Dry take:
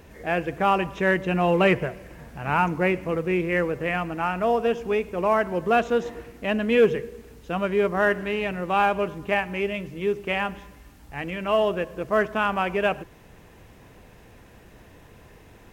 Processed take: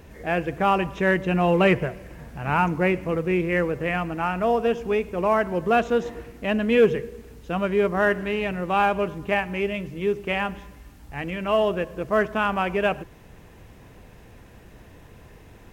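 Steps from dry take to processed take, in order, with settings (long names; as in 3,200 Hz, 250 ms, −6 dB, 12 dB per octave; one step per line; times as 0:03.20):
low-shelf EQ 200 Hz +4 dB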